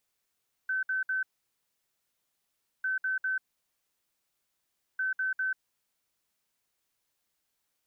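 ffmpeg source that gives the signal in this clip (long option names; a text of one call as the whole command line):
ffmpeg -f lavfi -i "aevalsrc='0.0447*sin(2*PI*1530*t)*clip(min(mod(mod(t,2.15),0.2),0.14-mod(mod(t,2.15),0.2))/0.005,0,1)*lt(mod(t,2.15),0.6)':duration=6.45:sample_rate=44100" out.wav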